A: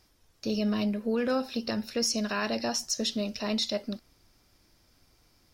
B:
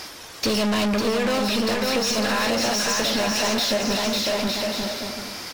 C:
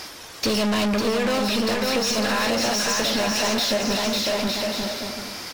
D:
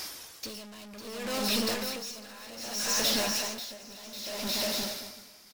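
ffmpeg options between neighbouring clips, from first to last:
ffmpeg -i in.wav -filter_complex "[0:a]asplit=2[link_01][link_02];[link_02]highpass=frequency=720:poles=1,volume=35dB,asoftclip=type=tanh:threshold=-17.5dB[link_03];[link_01][link_03]amix=inputs=2:normalize=0,lowpass=frequency=5400:poles=1,volume=-6dB,aecho=1:1:550|907.5|1140|1291|1389:0.631|0.398|0.251|0.158|0.1,acompressor=threshold=-24dB:ratio=6,volume=4.5dB" out.wav
ffmpeg -i in.wav -af anull out.wav
ffmpeg -i in.wav -af "crystalizer=i=2:c=0,aecho=1:1:1009:0.15,aeval=exprs='val(0)*pow(10,-19*(0.5-0.5*cos(2*PI*0.64*n/s))/20)':channel_layout=same,volume=-7.5dB" out.wav

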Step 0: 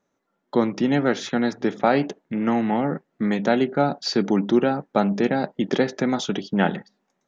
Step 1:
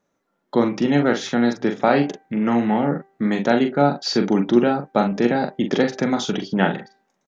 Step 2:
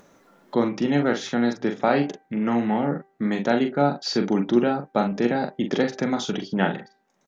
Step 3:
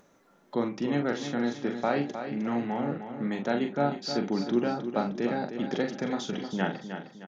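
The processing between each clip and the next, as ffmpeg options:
ffmpeg -i in.wav -filter_complex "[0:a]asplit=2[link_01][link_02];[link_02]adelay=42,volume=-6.5dB[link_03];[link_01][link_03]amix=inputs=2:normalize=0,bandreject=frequency=391.3:width_type=h:width=4,bandreject=frequency=782.6:width_type=h:width=4,bandreject=frequency=1173.9:width_type=h:width=4,bandreject=frequency=1565.2:width_type=h:width=4,bandreject=frequency=1956.5:width_type=h:width=4,bandreject=frequency=2347.8:width_type=h:width=4,volume=1.5dB" out.wav
ffmpeg -i in.wav -af "acompressor=mode=upward:threshold=-35dB:ratio=2.5,volume=-3.5dB" out.wav
ffmpeg -i in.wav -af "aecho=1:1:309|618|927|1236|1545:0.355|0.149|0.0626|0.0263|0.011,volume=-7dB" out.wav

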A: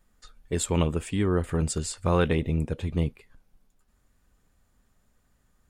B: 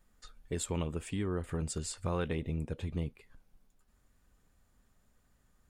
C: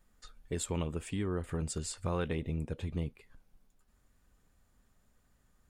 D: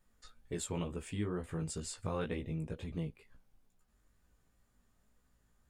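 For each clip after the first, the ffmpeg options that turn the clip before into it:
ffmpeg -i in.wav -af "acompressor=threshold=-34dB:ratio=2,volume=-2.5dB" out.wav
ffmpeg -i in.wav -af anull out.wav
ffmpeg -i in.wav -af "flanger=delay=16:depth=3.1:speed=2.1" out.wav

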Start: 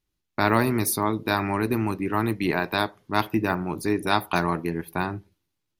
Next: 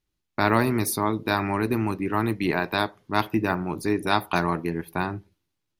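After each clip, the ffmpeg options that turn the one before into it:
ffmpeg -i in.wav -af "highshelf=frequency=10000:gain=-4.5" out.wav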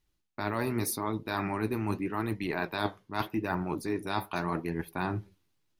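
ffmpeg -i in.wav -af "areverse,acompressor=threshold=-30dB:ratio=6,areverse,flanger=delay=1:depth=9.6:regen=66:speed=0.84:shape=sinusoidal,volume=6.5dB" out.wav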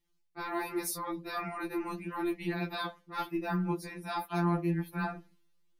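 ffmpeg -i in.wav -af "afftfilt=real='re*2.83*eq(mod(b,8),0)':imag='im*2.83*eq(mod(b,8),0)':win_size=2048:overlap=0.75" out.wav

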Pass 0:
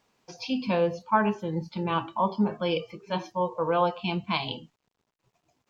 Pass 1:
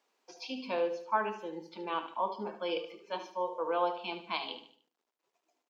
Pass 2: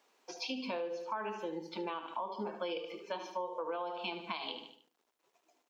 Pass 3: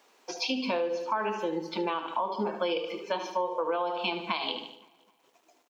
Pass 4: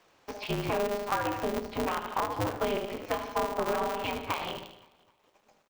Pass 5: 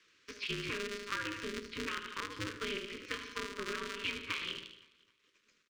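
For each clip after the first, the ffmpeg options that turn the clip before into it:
ffmpeg -i in.wav -af "highpass=frequency=300:width=0.5412,highpass=frequency=300:width=1.3066,aecho=1:1:74|148|222|296:0.282|0.118|0.0497|0.0209,volume=-6.5dB" out.wav
ffmpeg -i in.wav -af "bandreject=frequency=4800:width=28,alimiter=level_in=2.5dB:limit=-24dB:level=0:latency=1:release=193,volume=-2.5dB,acompressor=threshold=-42dB:ratio=4,volume=6dB" out.wav
ffmpeg -i in.wav -filter_complex "[0:a]asplit=2[link_01][link_02];[link_02]adelay=260,lowpass=frequency=3600:poles=1,volume=-23.5dB,asplit=2[link_03][link_04];[link_04]adelay=260,lowpass=frequency=3600:poles=1,volume=0.47,asplit=2[link_05][link_06];[link_06]adelay=260,lowpass=frequency=3600:poles=1,volume=0.47[link_07];[link_01][link_03][link_05][link_07]amix=inputs=4:normalize=0,volume=8.5dB" out.wav
ffmpeg -i in.wav -filter_complex "[0:a]highshelf=frequency=5500:gain=-8.5,acrossover=split=3100[link_01][link_02];[link_02]acompressor=threshold=-57dB:ratio=4:attack=1:release=60[link_03];[link_01][link_03]amix=inputs=2:normalize=0,aeval=exprs='val(0)*sgn(sin(2*PI*100*n/s))':channel_layout=same" out.wav
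ffmpeg -i in.wav -filter_complex "[0:a]acrossover=split=410 8000:gain=0.251 1 0.112[link_01][link_02][link_03];[link_01][link_02][link_03]amix=inputs=3:normalize=0,acrossover=split=3700[link_04][link_05];[link_05]asoftclip=type=hard:threshold=-33.5dB[link_06];[link_04][link_06]amix=inputs=2:normalize=0,asuperstop=centerf=740:order=4:qfactor=0.61,volume=1dB" out.wav

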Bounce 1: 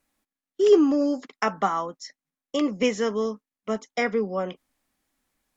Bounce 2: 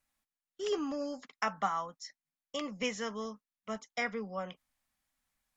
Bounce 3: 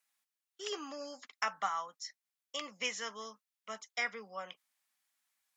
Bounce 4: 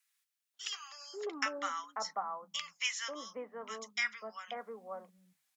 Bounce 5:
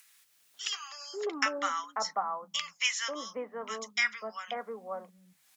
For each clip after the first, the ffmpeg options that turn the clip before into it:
ffmpeg -i in.wav -af "equalizer=frequency=350:width_type=o:width=1.1:gain=-13.5,volume=-6dB" out.wav
ffmpeg -i in.wav -af "highpass=frequency=1500:poles=1,volume=2.5dB" out.wav
ffmpeg -i in.wav -filter_complex "[0:a]bandreject=frequency=50:width_type=h:width=6,bandreject=frequency=100:width_type=h:width=6,bandreject=frequency=150:width_type=h:width=6,bandreject=frequency=200:width_type=h:width=6,acrossover=split=180|1100[link_01][link_02][link_03];[link_02]adelay=540[link_04];[link_01]adelay=800[link_05];[link_05][link_04][link_03]amix=inputs=3:normalize=0,volume=2.5dB" out.wav
ffmpeg -i in.wav -af "acompressor=mode=upward:threshold=-56dB:ratio=2.5,volume=5.5dB" out.wav

